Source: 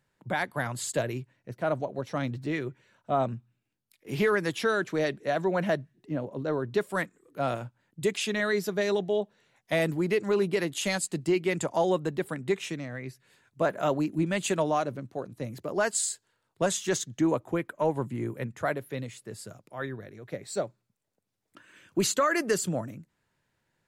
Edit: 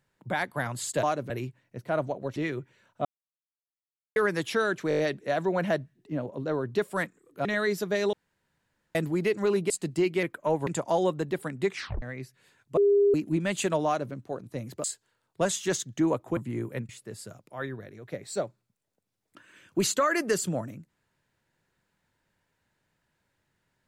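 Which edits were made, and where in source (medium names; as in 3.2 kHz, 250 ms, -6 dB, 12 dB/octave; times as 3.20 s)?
2.09–2.45 s: delete
3.14–4.25 s: mute
4.98 s: stutter 0.02 s, 6 plays
7.44–8.31 s: delete
8.99–9.81 s: room tone
10.56–11.00 s: delete
12.58 s: tape stop 0.30 s
13.63–14.00 s: bleep 404 Hz -17.5 dBFS
14.72–14.99 s: copy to 1.03 s
15.70–16.05 s: delete
17.58–18.02 s: move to 11.53 s
18.54–19.09 s: delete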